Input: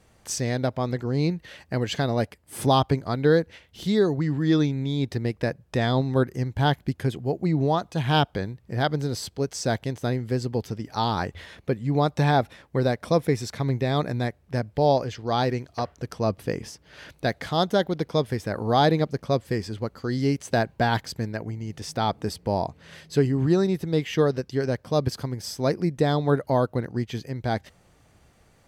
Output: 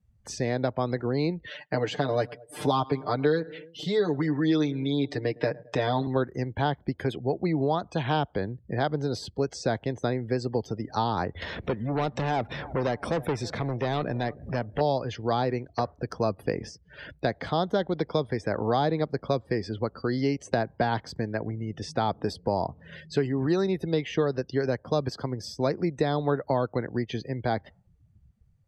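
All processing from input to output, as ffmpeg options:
ffmpeg -i in.wav -filter_complex "[0:a]asettb=1/sr,asplit=3[link_01][link_02][link_03];[link_01]atrim=end=1.464[link_04];[link_02]atrim=start=1.46:end=6.07,asetpts=PTS-STARTPTS,afade=type=in:duration=0.004:curve=qsin,afade=type=out:start_time=4.606:duration=0.004:curve=qsin,highpass=frequency=250:poles=1,aecho=1:1:6.7:0.85,atrim=end_sample=203301,aecho=1:1:108|216|324:0.0631|0.0322|0.0164,atrim=end_sample=203301[link_05];[link_03]atrim=start=6.066[link_06];[link_04][link_05]acrossfade=duration=0.004:curve1=hsin:curve2=qsin[link_07];[link_07][link_06]acrossfade=duration=0.004:curve1=qsin:curve2=hsin,asettb=1/sr,asplit=3[link_08][link_09][link_10];[link_08]atrim=end=11.424[link_11];[link_09]atrim=start=11.42:end=14.81,asetpts=PTS-STARTPTS,afade=type=in:duration=0.004:curve=qsin,afade=type=out:start_time=3.386:duration=0.004:curve=qsin,acompressor=mode=upward:threshold=-24dB:ratio=2.5:attack=3.2:release=140:knee=2.83:detection=peak,asoftclip=type=hard:threshold=-23.5dB,asplit=2[link_12][link_13];[link_13]adelay=320,lowpass=frequency=3600:poles=1,volume=-20dB,asplit=2[link_14][link_15];[link_15]adelay=320,lowpass=frequency=3600:poles=1,volume=0.42,asplit=2[link_16][link_17];[link_17]adelay=320,lowpass=frequency=3600:poles=1,volume=0.42[link_18];[link_12][link_14][link_16][link_18]amix=inputs=4:normalize=0,atrim=end_sample=149499[link_19];[link_10]atrim=start=14.806[link_20];[link_11][link_19]acrossfade=duration=0.004:curve1=hsin:curve2=qsin[link_21];[link_21][link_20]acrossfade=duration=0.004:curve1=qsin:curve2=hsin,afftdn=noise_reduction=30:noise_floor=-46,acrossover=split=86|290|1200|4600[link_22][link_23][link_24][link_25][link_26];[link_22]acompressor=threshold=-50dB:ratio=4[link_27];[link_23]acompressor=threshold=-37dB:ratio=4[link_28];[link_24]acompressor=threshold=-28dB:ratio=4[link_29];[link_25]acompressor=threshold=-42dB:ratio=4[link_30];[link_26]acompressor=threshold=-55dB:ratio=4[link_31];[link_27][link_28][link_29][link_30][link_31]amix=inputs=5:normalize=0,volume=3.5dB" out.wav

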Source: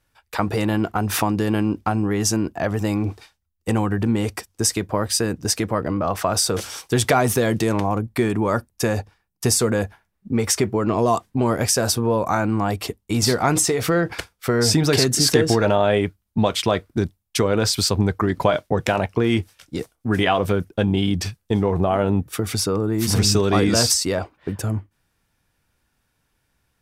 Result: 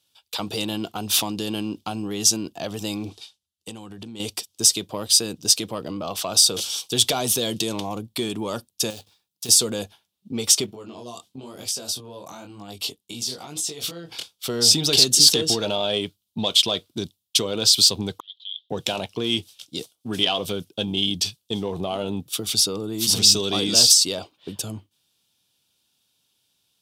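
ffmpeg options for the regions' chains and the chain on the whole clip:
ffmpeg -i in.wav -filter_complex "[0:a]asettb=1/sr,asplit=3[link_01][link_02][link_03];[link_01]atrim=end=3.094[link_04];[link_02]atrim=start=3.09:end=4.2,asetpts=PTS-STARTPTS,afade=type=in:duration=0.004:curve=qsin,afade=type=out:start_time=1.106:duration=0.004:curve=qsin,lowpass=frequency=12000:width=0.5412,lowpass=frequency=12000:width=1.3066,acompressor=threshold=-26dB:ratio=10:attack=3.2:release=140:knee=1:detection=peak[link_05];[link_03]atrim=start=4.196[link_06];[link_04][link_05]acrossfade=duration=0.004:curve1=hsin:curve2=qsin[link_07];[link_07][link_06]acrossfade=duration=0.004:curve1=qsin:curve2=hsin,asettb=1/sr,asplit=3[link_08][link_09][link_10];[link_08]atrim=end=8.904[link_11];[link_09]atrim=start=8.9:end=9.49,asetpts=PTS-STARTPTS,afade=type=in:duration=0.004:curve=qsin,afade=type=out:start_time=0.586:duration=0.004:curve=qsin,bandreject=frequency=3000:width=7.7,acrusher=bits=3:mode=log:mix=0:aa=0.000001,acompressor=threshold=-44dB:ratio=1.5:attack=3.2:release=140:knee=1:detection=peak[link_12];[link_10]atrim=start=9.486[link_13];[link_11][link_12]acrossfade=duration=0.004:curve1=hsin:curve2=qsin[link_14];[link_14][link_13]acrossfade=duration=0.004:curve1=qsin:curve2=hsin,asettb=1/sr,asplit=3[link_15][link_16][link_17];[link_15]atrim=end=10.664[link_18];[link_16]atrim=start=10.66:end=14.32,asetpts=PTS-STARTPTS,afade=type=in:duration=0.004:curve=qsin,afade=type=out:start_time=3.656:duration=0.004:curve=qsin,acompressor=threshold=-23dB:ratio=12:attack=3.2:release=140:knee=1:detection=peak,flanger=delay=19.5:depth=5.5:speed=1[link_19];[link_17]atrim=start=14.316[link_20];[link_18][link_19]acrossfade=duration=0.004:curve1=hsin:curve2=qsin[link_21];[link_21][link_20]acrossfade=duration=0.004:curve1=qsin:curve2=hsin,asettb=1/sr,asplit=3[link_22][link_23][link_24];[link_22]atrim=end=18.204[link_25];[link_23]atrim=start=18.2:end=18.7,asetpts=PTS-STARTPTS,afade=type=in:duration=0.004:curve=qsin,afade=type=out:start_time=0.496:duration=0.004:curve=qsin,asuperpass=centerf=3400:order=4:qfactor=5.3,acompressor=threshold=-43dB:ratio=2:attack=3.2:release=140:knee=1:detection=peak[link_26];[link_24]atrim=start=18.696[link_27];[link_25][link_26]acrossfade=duration=0.004:curve1=hsin:curve2=qsin[link_28];[link_28][link_27]acrossfade=duration=0.004:curve1=qsin:curve2=hsin,highpass=140,acontrast=44,highshelf=frequency=2500:width_type=q:width=3:gain=10,volume=-12dB" out.wav

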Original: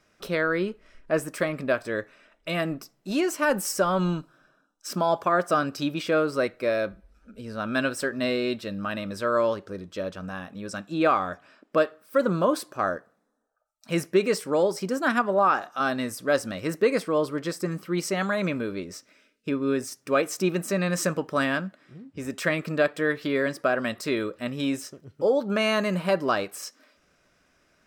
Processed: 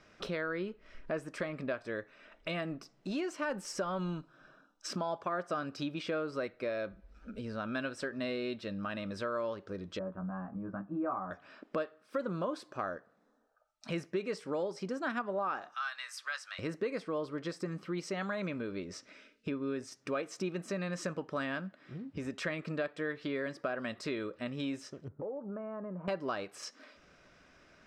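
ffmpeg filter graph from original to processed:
ffmpeg -i in.wav -filter_complex "[0:a]asettb=1/sr,asplit=3[link_01][link_02][link_03];[link_01]atrim=end=9.994[link_04];[link_02]atrim=start=9.99:end=11.31,asetpts=PTS-STARTPTS,afade=type=in:duration=0.004:curve=qsin,afade=type=out:start_time=1.316:duration=0.004:curve=qsin,lowpass=frequency=1200:width=0.5412,lowpass=frequency=1200:width=1.3066,equalizer=frequency=470:width_type=o:width=0.71:gain=-8.5,asplit=2[link_05][link_06];[link_06]adelay=16,volume=-3dB[link_07];[link_05][link_07]amix=inputs=2:normalize=0,atrim=end_sample=58212[link_08];[link_03]atrim=start=11.306[link_09];[link_04][link_08]acrossfade=duration=0.004:curve1=hsin:curve2=qsin[link_10];[link_10][link_09]acrossfade=duration=0.004:curve1=qsin:curve2=hsin,asettb=1/sr,asplit=3[link_11][link_12][link_13];[link_11]atrim=end=15.744[link_14];[link_12]atrim=start=15.74:end=16.59,asetpts=PTS-STARTPTS,afade=type=in:duration=0.004:curve=qsin,afade=type=out:start_time=0.846:duration=0.004:curve=qsin,highpass=frequency=1200:width=0.5412,highpass=frequency=1200:width=1.3066,asplit=2[link_15][link_16];[link_16]adelay=12,volume=-14dB[link_17];[link_15][link_17]amix=inputs=2:normalize=0,atrim=end_sample=37485[link_18];[link_13]atrim=start=16.586[link_19];[link_14][link_18]acrossfade=duration=0.004:curve1=hsin:curve2=qsin[link_20];[link_20][link_19]acrossfade=duration=0.004:curve1=qsin:curve2=hsin,asettb=1/sr,asplit=3[link_21][link_22][link_23];[link_21]atrim=end=25.084[link_24];[link_22]atrim=start=25.08:end=26.08,asetpts=PTS-STARTPTS,afade=type=in:duration=0.004:curve=qsin,afade=type=out:start_time=0.996:duration=0.004:curve=qsin,lowpass=frequency=1200:width=0.5412,lowpass=frequency=1200:width=1.3066,acompressor=threshold=-44dB:ratio=2:attack=3.2:release=140:knee=1:detection=peak[link_25];[link_23]atrim=start=26.076[link_26];[link_24][link_25]acrossfade=duration=0.004:curve1=hsin:curve2=qsin[link_27];[link_27][link_26]acrossfade=duration=0.004:curve1=qsin:curve2=hsin,lowpass=5200,acompressor=threshold=-45dB:ratio=2.5,volume=4dB" out.wav

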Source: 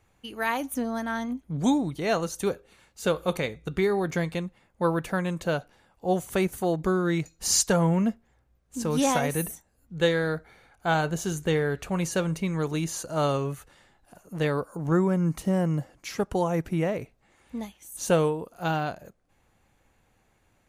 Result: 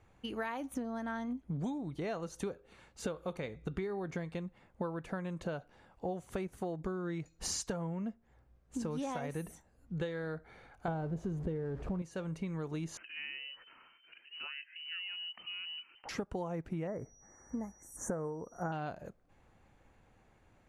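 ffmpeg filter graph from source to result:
ffmpeg -i in.wav -filter_complex "[0:a]asettb=1/sr,asplit=3[link_01][link_02][link_03];[link_01]atrim=end=10.884[link_04];[link_02]atrim=start=10.88:end=12.02,asetpts=PTS-STARTPTS,afade=type=in:duration=0.004:curve=qsin,afade=type=out:start_time=1.136:duration=0.004:curve=qsin,aeval=exprs='val(0)+0.5*0.0316*sgn(val(0))':channel_layout=same,tiltshelf=frequency=1100:gain=9.5[link_05];[link_03]atrim=start=12.016[link_06];[link_04][link_05]acrossfade=duration=0.004:curve1=hsin:curve2=qsin[link_07];[link_07][link_06]acrossfade=duration=0.004:curve1=qsin:curve2=hsin,asettb=1/sr,asplit=3[link_08][link_09][link_10];[link_08]atrim=end=12.974[link_11];[link_09]atrim=start=12.97:end=16.09,asetpts=PTS-STARTPTS,afade=type=in:duration=0.004:curve=qsin,afade=type=out:start_time=3.116:duration=0.004:curve=qsin,lowpass=frequency=2600:width_type=q:width=0.5098,lowpass=frequency=2600:width_type=q:width=0.6013,lowpass=frequency=2600:width_type=q:width=0.9,lowpass=frequency=2600:width_type=q:width=2.563,afreqshift=-3100,acompressor=threshold=-51dB:ratio=2:attack=3.2:release=140:knee=1:detection=peak[link_12];[link_10]atrim=start=16.086[link_13];[link_11][link_12]acrossfade=duration=0.004:curve1=hsin:curve2=qsin[link_14];[link_14][link_13]acrossfade=duration=0.004:curve1=qsin:curve2=hsin,asettb=1/sr,asplit=3[link_15][link_16][link_17];[link_15]atrim=end=16.874[link_18];[link_16]atrim=start=16.87:end=18.72,asetpts=PTS-STARTPTS,afade=type=in:duration=0.004:curve=qsin,afade=type=out:start_time=1.846:duration=0.004:curve=qsin,aeval=exprs='val(0)+0.00398*sin(2*PI*5800*n/s)':channel_layout=same,asuperstop=centerf=3500:order=12:qfactor=0.85[link_19];[link_17]atrim=start=18.716[link_20];[link_18][link_19]acrossfade=duration=0.004:curve1=hsin:curve2=qsin[link_21];[link_21][link_20]acrossfade=duration=0.004:curve1=qsin:curve2=hsin,lowpass=9700,highshelf=frequency=2800:gain=-9,acompressor=threshold=-36dB:ratio=12,volume=1.5dB" out.wav

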